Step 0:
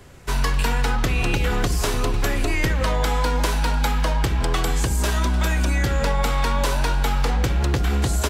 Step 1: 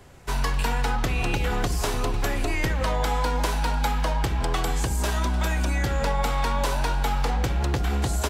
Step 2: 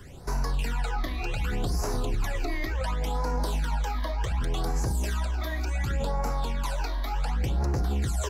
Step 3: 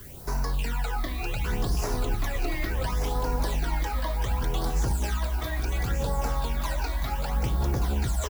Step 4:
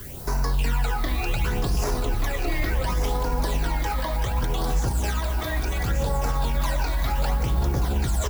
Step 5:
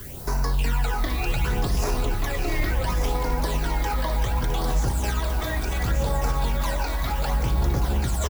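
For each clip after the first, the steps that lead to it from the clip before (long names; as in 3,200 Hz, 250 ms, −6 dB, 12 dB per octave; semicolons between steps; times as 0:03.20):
parametric band 790 Hz +4.5 dB 0.63 octaves; level −4 dB
brickwall limiter −25 dBFS, peak gain reduction 11.5 dB; all-pass phaser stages 12, 0.68 Hz, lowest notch 140–3,300 Hz; level +4.5 dB
background noise violet −48 dBFS; single-tap delay 1,181 ms −6.5 dB
brickwall limiter −22.5 dBFS, peak gain reduction 6.5 dB; on a send at −12 dB: convolution reverb RT60 2.6 s, pre-delay 66 ms; on the sum: level +6 dB
single-tap delay 660 ms −10.5 dB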